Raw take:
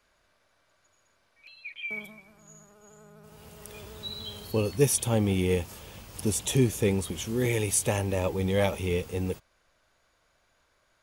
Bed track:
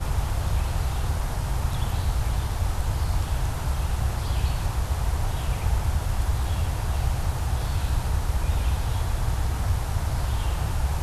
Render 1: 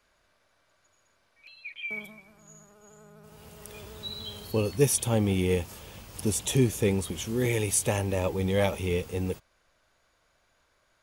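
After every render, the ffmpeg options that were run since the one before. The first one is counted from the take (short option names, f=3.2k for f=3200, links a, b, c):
-af anull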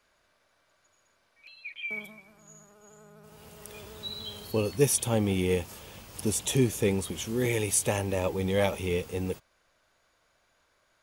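-af "lowshelf=f=110:g=-5.5"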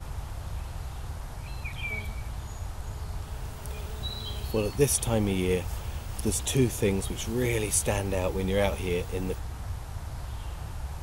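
-filter_complex "[1:a]volume=-11dB[a];[0:a][a]amix=inputs=2:normalize=0"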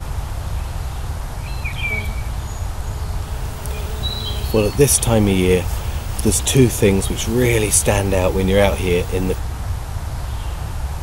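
-af "volume=11.5dB,alimiter=limit=-1dB:level=0:latency=1"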